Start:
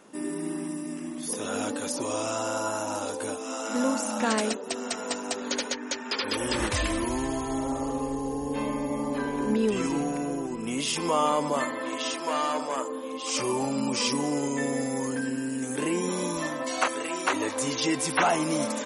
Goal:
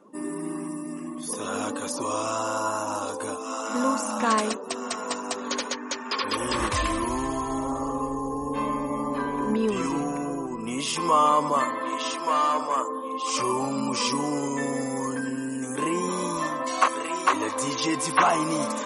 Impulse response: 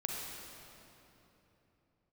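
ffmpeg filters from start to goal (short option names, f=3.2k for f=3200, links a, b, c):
-af "afftdn=nr=17:nf=-50,equalizer=f=1.1k:w=5.8:g=13,areverse,acompressor=mode=upward:threshold=-32dB:ratio=2.5,areverse"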